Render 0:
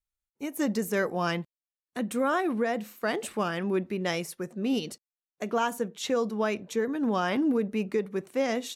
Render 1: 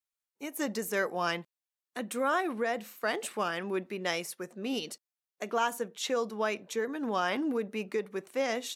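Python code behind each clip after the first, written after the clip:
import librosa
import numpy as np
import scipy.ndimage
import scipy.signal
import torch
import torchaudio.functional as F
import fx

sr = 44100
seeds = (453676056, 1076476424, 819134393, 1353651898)

y = fx.highpass(x, sr, hz=530.0, slope=6)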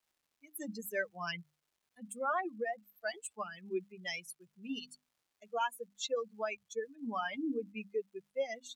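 y = fx.bin_expand(x, sr, power=3.0)
y = fx.dmg_crackle(y, sr, seeds[0], per_s=540.0, level_db=-68.0)
y = fx.hum_notches(y, sr, base_hz=50, count=6)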